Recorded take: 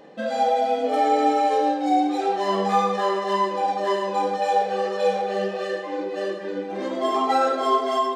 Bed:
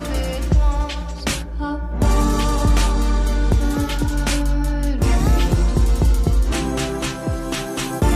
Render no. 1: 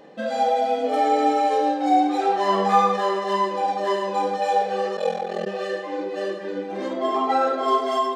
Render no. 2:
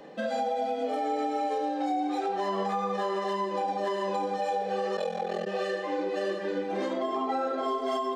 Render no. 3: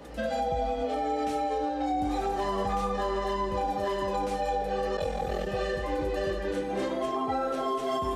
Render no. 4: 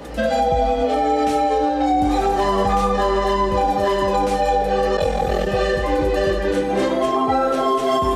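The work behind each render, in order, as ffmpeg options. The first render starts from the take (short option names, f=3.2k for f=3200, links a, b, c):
-filter_complex "[0:a]asettb=1/sr,asplit=3[a][b][c];[a]atrim=end=1.804[d];[b]atrim=start=1.8:end=2.97,asetpts=PTS-STARTPTS,afade=t=in:d=0.004:c=qsin,afade=t=out:st=1.166:d=0.004:c=qsin,equalizer=f=1.2k:t=o:w=1.6:g=4.5[e];[c]atrim=start=2.966[f];[d][e]acrossfade=d=0.004:c1=hsin:c2=qsin[g];[g][f]acrossfade=d=0.004:c1=qsin:c2=hsin,asplit=3[h][i][j];[h]afade=t=out:st=4.95:d=0.02[k];[i]aeval=exprs='val(0)*sin(2*PI*21*n/s)':c=same,afade=t=in:st=4.95:d=0.02,afade=t=out:st=5.45:d=0.02[l];[j]afade=t=in:st=5.45:d=0.02[m];[k][l][m]amix=inputs=3:normalize=0,asettb=1/sr,asplit=3[n][o][p];[n]atrim=end=6.934[q];[o]atrim=start=6.93:end=7.68,asetpts=PTS-STARTPTS,afade=t=in:d=0.004:c=qsin,afade=t=out:st=0.746:d=0.004:c=qsin,lowpass=f=3.1k:p=1[r];[p]atrim=start=7.676[s];[q][r]acrossfade=d=0.004:c1=hsin:c2=qsin[t];[t][s]acrossfade=d=0.004:c1=qsin:c2=hsin"
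-filter_complex "[0:a]acrossover=split=240|530[a][b][c];[a]acompressor=threshold=-39dB:ratio=4[d];[b]acompressor=threshold=-33dB:ratio=4[e];[c]acompressor=threshold=-30dB:ratio=4[f];[d][e][f]amix=inputs=3:normalize=0,alimiter=limit=-21dB:level=0:latency=1:release=120"
-filter_complex "[1:a]volume=-22.5dB[a];[0:a][a]amix=inputs=2:normalize=0"
-af "volume=11dB"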